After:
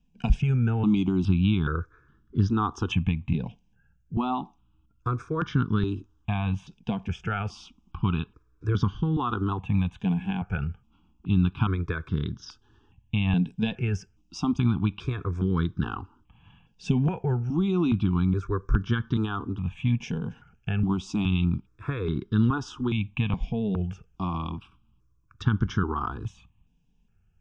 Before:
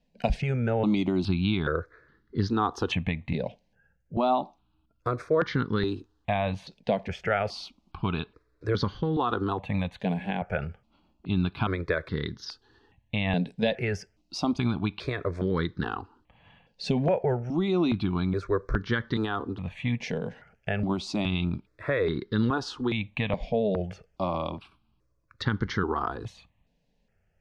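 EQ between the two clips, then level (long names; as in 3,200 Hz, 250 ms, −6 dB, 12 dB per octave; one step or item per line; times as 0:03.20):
low-shelf EQ 290 Hz +7 dB
phaser with its sweep stopped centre 2,900 Hz, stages 8
0.0 dB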